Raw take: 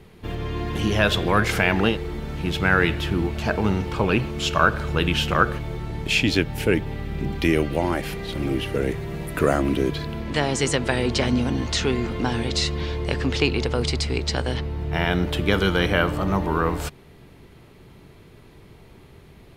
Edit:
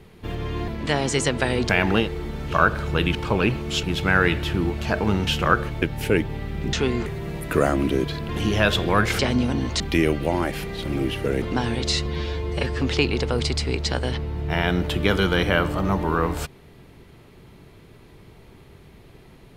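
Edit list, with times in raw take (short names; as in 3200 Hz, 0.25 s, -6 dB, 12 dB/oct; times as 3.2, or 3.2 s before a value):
0.68–1.58 swap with 10.15–11.16
2.4–3.84 swap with 4.52–5.16
5.71–6.39 cut
7.3–8.92 swap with 11.77–12.1
12.74–13.24 stretch 1.5×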